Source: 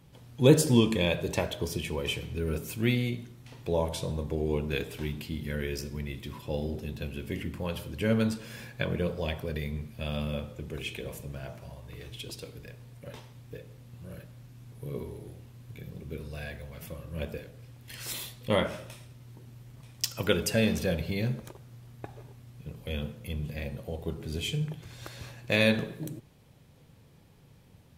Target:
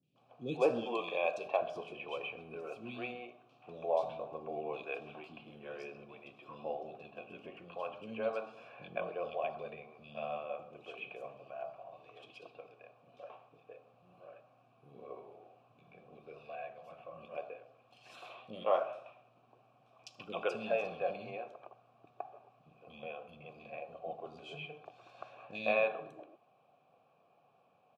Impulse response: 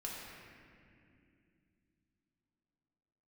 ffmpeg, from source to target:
-filter_complex "[0:a]highpass=150,aemphasis=mode=reproduction:type=50fm,bandreject=f=2.1k:w=12,asettb=1/sr,asplit=3[a][b][c];[a]atrim=end=0.834[d];[b]atrim=start=0.83:end=1.45,asetpts=PTS-STARTPTS,afade=t=in:d=0.004:c=qsin,afade=t=out:st=0.616:d=0.004:c=qsin,bass=f=250:g=-9,treble=f=4k:g=7[e];[c]atrim=start=1.446[f];[d][e]acrossfade=d=0.004:c1=hsin:c2=qsin[g];[g][f]acrossfade=d=0.004:c1=qsin:c2=hsin,asplit=3[h][i][j];[h]bandpass=f=730:t=q:w=8,volume=0dB[k];[i]bandpass=f=1.09k:t=q:w=8,volume=-6dB[l];[j]bandpass=f=2.44k:t=q:w=8,volume=-9dB[m];[k][l][m]amix=inputs=3:normalize=0,acrossover=split=310|3200[n][o][p];[p]adelay=30[q];[o]adelay=160[r];[n][r][q]amix=inputs=3:normalize=0,volume=8.5dB"

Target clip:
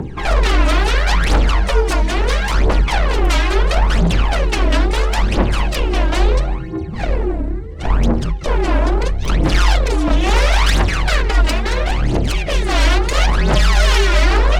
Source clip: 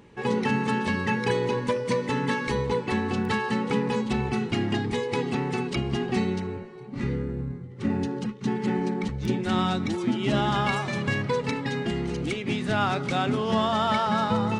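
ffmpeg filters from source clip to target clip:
-filter_complex "[0:a]asettb=1/sr,asplit=3[a][b][c];[a]atrim=end=1.894[d];[b]atrim=start=1.89:end=2.42,asetpts=PTS-STARTPTS,afade=t=in:d=0.004:c=qsin,afade=t=out:st=0.526:d=0.004:c=qsin,equalizer=f=920:t=o:w=1.4:g=-5.5[e];[c]atrim=start=2.416[f];[d][e]acrossfade=d=0.004:c1=hsin:c2=qsin[g];[g][f]acrossfade=d=0.004:c1=qsin:c2=hsin,acrossover=split=1000[h][i];[h]acompressor=mode=upward:threshold=-32dB:ratio=2.5[j];[j][i]amix=inputs=2:normalize=0,aeval=exprs='0.266*(cos(1*acos(clip(val(0)/0.266,-1,1)))-cos(1*PI/2))+0.075*(cos(6*acos(clip(val(0)/0.266,-1,1)))-cos(6*PI/2))+0.106*(cos(7*acos(clip(val(0)/0.266,-1,1)))-cos(7*PI/2))':c=same,aphaser=in_gain=1:out_gain=1:delay=3.1:decay=0.7:speed=0.74:type=triangular,asoftclip=type=tanh:threshold=-10dB,afreqshift=-49,volume=4.5dB"

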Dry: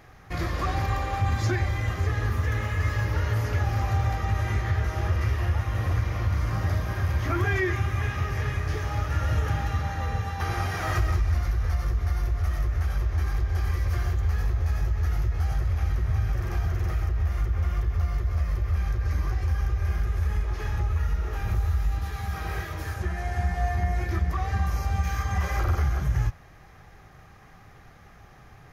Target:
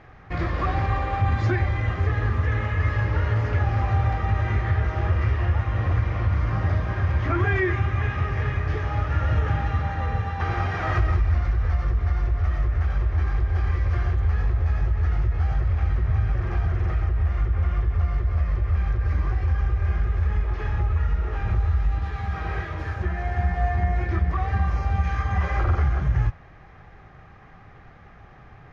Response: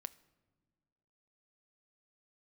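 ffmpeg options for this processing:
-af "lowpass=2.8k,volume=3dB"

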